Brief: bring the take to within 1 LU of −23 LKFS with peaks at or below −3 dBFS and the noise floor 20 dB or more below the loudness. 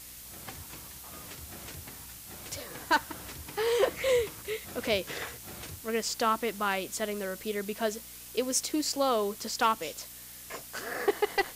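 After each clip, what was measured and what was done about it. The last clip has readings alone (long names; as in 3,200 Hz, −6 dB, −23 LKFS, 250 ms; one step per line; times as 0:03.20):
mains hum 60 Hz; hum harmonics up to 300 Hz; level of the hum −56 dBFS; background noise floor −47 dBFS; target noise floor −52 dBFS; integrated loudness −31.5 LKFS; sample peak −15.0 dBFS; target loudness −23.0 LKFS
→ hum removal 60 Hz, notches 5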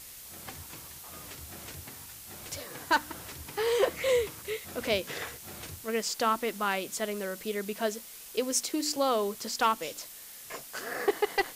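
mains hum none found; background noise floor −47 dBFS; target noise floor −52 dBFS
→ broadband denoise 6 dB, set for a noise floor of −47 dBFS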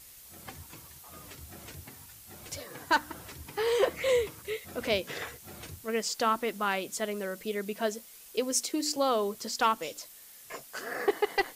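background noise floor −52 dBFS; integrated loudness −31.0 LKFS; sample peak −15.0 dBFS; target loudness −23.0 LKFS
→ level +8 dB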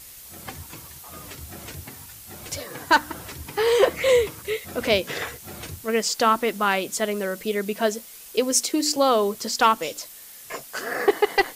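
integrated loudness −23.0 LKFS; sample peak −7.0 dBFS; background noise floor −44 dBFS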